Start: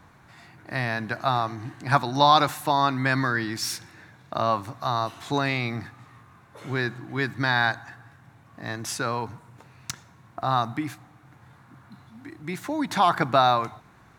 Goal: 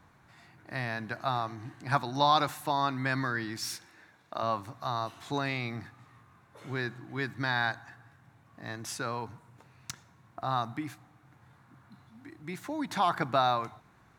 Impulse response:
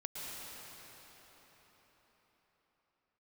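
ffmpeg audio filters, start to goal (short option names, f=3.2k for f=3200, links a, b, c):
-filter_complex "[0:a]asettb=1/sr,asplit=3[a][b][c];[a]atrim=end=3.774[d];[b]atrim=start=3.77:end=4.43,asetpts=PTS-STARTPTS,afade=t=in:d=0.004:c=qsin,afade=t=out:st=0.656:d=0.004:c=qsin,equalizer=f=120:w=0.99:g=-12[e];[c]atrim=start=4.426[f];[d][e]acrossfade=d=0.004:c1=hsin:c2=qsin[g];[g][f]acrossfade=d=0.004:c1=qsin:c2=hsin,volume=-7dB"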